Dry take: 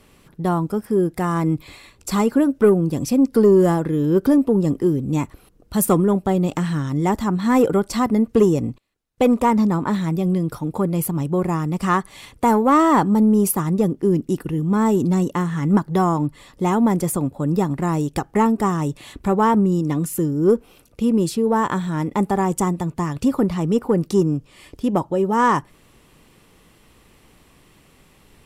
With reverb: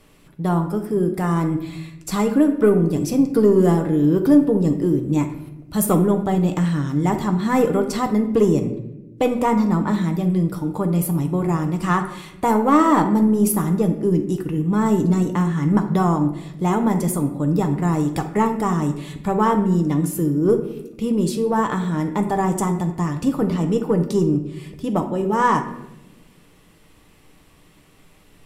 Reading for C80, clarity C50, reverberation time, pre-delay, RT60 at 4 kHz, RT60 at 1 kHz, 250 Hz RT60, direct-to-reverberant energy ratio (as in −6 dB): 12.0 dB, 9.0 dB, 0.95 s, 6 ms, 0.55 s, 0.80 s, 1.5 s, 4.5 dB